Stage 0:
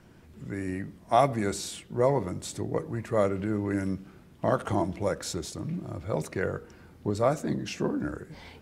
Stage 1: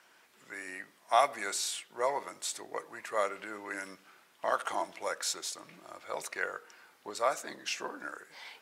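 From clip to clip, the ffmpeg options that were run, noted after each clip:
-af "highpass=980,volume=2.5dB"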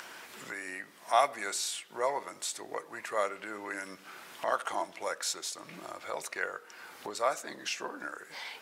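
-af "acompressor=mode=upward:threshold=-34dB:ratio=2.5"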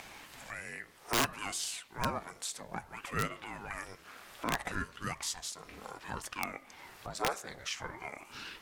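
-af "aeval=exprs='(mod(7.94*val(0)+1,2)-1)/7.94':c=same,aeval=exprs='val(0)*sin(2*PI*430*n/s+430*0.75/0.61*sin(2*PI*0.61*n/s))':c=same"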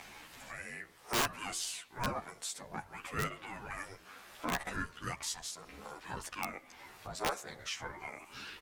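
-filter_complex "[0:a]asplit=2[a][b];[b]adelay=11.8,afreqshift=1.9[c];[a][c]amix=inputs=2:normalize=1,volume=1.5dB"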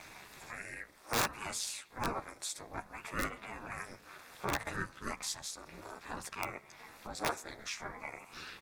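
-af "asuperstop=centerf=3000:order=4:qfactor=6.8,aeval=exprs='val(0)*sin(2*PI*110*n/s)':c=same,volume=3dB"

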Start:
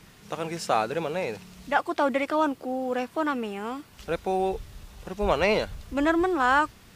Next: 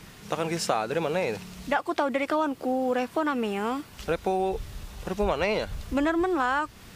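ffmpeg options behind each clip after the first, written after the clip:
-af "acompressor=threshold=-27dB:ratio=6,volume=5dB"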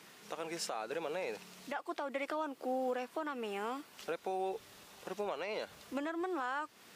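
-af "highpass=310,alimiter=limit=-20dB:level=0:latency=1:release=305,volume=-7dB"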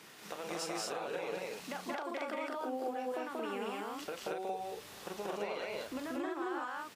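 -filter_complex "[0:a]acompressor=threshold=-40dB:ratio=6,asplit=2[a][b];[b]aecho=0:1:34.99|183.7|227.4:0.355|0.891|0.891[c];[a][c]amix=inputs=2:normalize=0,volume=1.5dB"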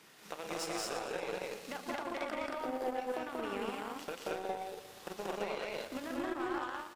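-af "aecho=1:1:118|236|354|472|590|708|826:0.316|0.183|0.106|0.0617|0.0358|0.0208|0.012,aeval=exprs='0.0596*(cos(1*acos(clip(val(0)/0.0596,-1,1)))-cos(1*PI/2))+0.000944*(cos(6*acos(clip(val(0)/0.0596,-1,1)))-cos(6*PI/2))+0.00422*(cos(7*acos(clip(val(0)/0.0596,-1,1)))-cos(7*PI/2))':c=same,volume=1dB"

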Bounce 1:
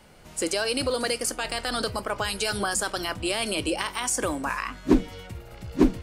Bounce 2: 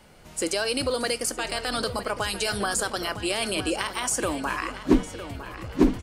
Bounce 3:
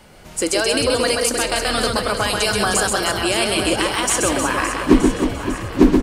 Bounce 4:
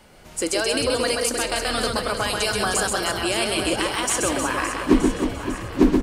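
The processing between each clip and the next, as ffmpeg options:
-filter_complex "[0:a]asplit=2[a][b];[b]adelay=957,lowpass=f=4.2k:p=1,volume=-11.5dB,asplit=2[c][d];[d]adelay=957,lowpass=f=4.2k:p=1,volume=0.52,asplit=2[e][f];[f]adelay=957,lowpass=f=4.2k:p=1,volume=0.52,asplit=2[g][h];[h]adelay=957,lowpass=f=4.2k:p=1,volume=0.52,asplit=2[i][j];[j]adelay=957,lowpass=f=4.2k:p=1,volume=0.52,asplit=2[k][l];[l]adelay=957,lowpass=f=4.2k:p=1,volume=0.52[m];[a][c][e][g][i][k][m]amix=inputs=7:normalize=0"
-af "aecho=1:1:130|312|566.8|923.5|1423:0.631|0.398|0.251|0.158|0.1,volume=6.5dB"
-af "bandreject=f=50:t=h:w=6,bandreject=f=100:t=h:w=6,bandreject=f=150:t=h:w=6,bandreject=f=200:t=h:w=6,volume=-4dB"

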